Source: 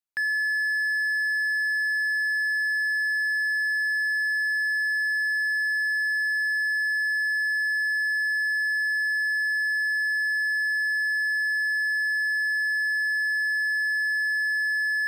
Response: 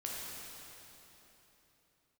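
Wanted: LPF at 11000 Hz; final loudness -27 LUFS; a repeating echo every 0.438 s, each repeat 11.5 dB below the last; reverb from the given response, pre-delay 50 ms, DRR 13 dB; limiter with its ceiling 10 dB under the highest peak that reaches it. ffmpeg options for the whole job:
-filter_complex "[0:a]lowpass=11k,alimiter=level_in=7dB:limit=-24dB:level=0:latency=1,volume=-7dB,aecho=1:1:438|876|1314:0.266|0.0718|0.0194,asplit=2[a][b];[1:a]atrim=start_sample=2205,adelay=50[c];[b][c]afir=irnorm=-1:irlink=0,volume=-14.5dB[d];[a][d]amix=inputs=2:normalize=0,volume=7dB"

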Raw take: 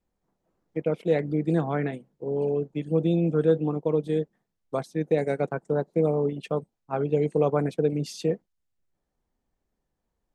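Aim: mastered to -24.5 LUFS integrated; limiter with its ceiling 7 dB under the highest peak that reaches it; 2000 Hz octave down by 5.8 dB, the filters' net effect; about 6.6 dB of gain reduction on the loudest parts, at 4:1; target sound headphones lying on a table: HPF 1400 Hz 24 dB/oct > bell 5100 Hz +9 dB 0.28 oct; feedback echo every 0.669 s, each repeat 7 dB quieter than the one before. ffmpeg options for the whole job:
-af "equalizer=f=2k:t=o:g=-6.5,acompressor=threshold=-25dB:ratio=4,alimiter=limit=-22.5dB:level=0:latency=1,highpass=f=1.4k:w=0.5412,highpass=f=1.4k:w=1.3066,equalizer=f=5.1k:t=o:w=0.28:g=9,aecho=1:1:669|1338|2007|2676|3345:0.447|0.201|0.0905|0.0407|0.0183,volume=24dB"

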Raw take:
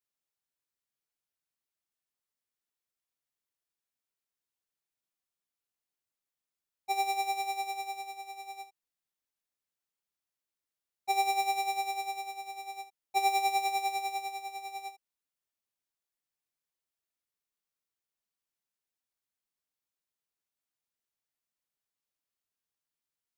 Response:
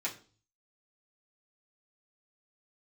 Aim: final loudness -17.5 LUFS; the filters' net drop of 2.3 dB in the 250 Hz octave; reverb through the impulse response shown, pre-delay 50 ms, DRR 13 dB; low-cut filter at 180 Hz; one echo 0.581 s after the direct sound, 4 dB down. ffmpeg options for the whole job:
-filter_complex "[0:a]highpass=180,equalizer=f=250:t=o:g=-5.5,aecho=1:1:581:0.631,asplit=2[a][b];[1:a]atrim=start_sample=2205,adelay=50[c];[b][c]afir=irnorm=-1:irlink=0,volume=-16.5dB[d];[a][d]amix=inputs=2:normalize=0,volume=16dB"

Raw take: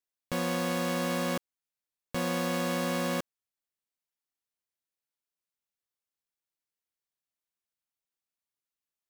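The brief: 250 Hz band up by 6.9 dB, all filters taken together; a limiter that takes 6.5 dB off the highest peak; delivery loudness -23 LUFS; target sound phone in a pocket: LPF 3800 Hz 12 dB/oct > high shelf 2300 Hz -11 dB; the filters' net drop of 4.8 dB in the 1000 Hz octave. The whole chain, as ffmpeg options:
-af "equalizer=f=250:t=o:g=8.5,equalizer=f=1k:t=o:g=-4.5,alimiter=level_in=0.5dB:limit=-24dB:level=0:latency=1,volume=-0.5dB,lowpass=3.8k,highshelf=f=2.3k:g=-11,volume=10.5dB"

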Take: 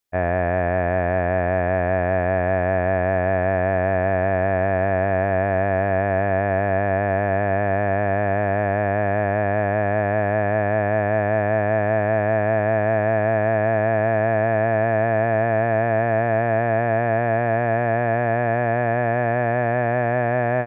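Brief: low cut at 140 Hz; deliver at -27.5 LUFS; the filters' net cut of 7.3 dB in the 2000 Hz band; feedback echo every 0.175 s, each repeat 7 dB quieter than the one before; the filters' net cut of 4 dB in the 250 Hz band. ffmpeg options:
-af "highpass=140,equalizer=f=250:t=o:g=-4.5,equalizer=f=2k:t=o:g=-9,aecho=1:1:175|350|525|700|875:0.447|0.201|0.0905|0.0407|0.0183,volume=-5.5dB"

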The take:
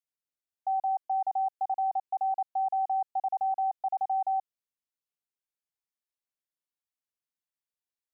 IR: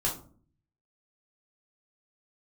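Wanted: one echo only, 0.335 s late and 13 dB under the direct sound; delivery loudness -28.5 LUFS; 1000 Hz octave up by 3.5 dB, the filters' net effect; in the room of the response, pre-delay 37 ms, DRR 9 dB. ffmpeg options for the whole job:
-filter_complex "[0:a]equalizer=f=1k:t=o:g=5.5,aecho=1:1:335:0.224,asplit=2[a][b];[1:a]atrim=start_sample=2205,adelay=37[c];[b][c]afir=irnorm=-1:irlink=0,volume=-16dB[d];[a][d]amix=inputs=2:normalize=0,volume=-2dB"

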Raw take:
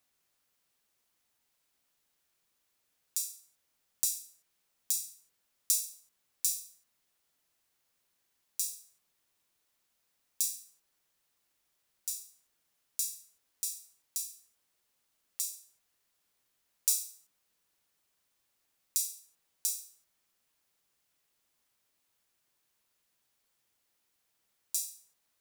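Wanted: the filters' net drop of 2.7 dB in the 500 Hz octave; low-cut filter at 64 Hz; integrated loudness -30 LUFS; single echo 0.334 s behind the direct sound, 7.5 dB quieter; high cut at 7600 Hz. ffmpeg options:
-af "highpass=64,lowpass=7.6k,equalizer=f=500:t=o:g=-3.5,aecho=1:1:334:0.422,volume=10dB"

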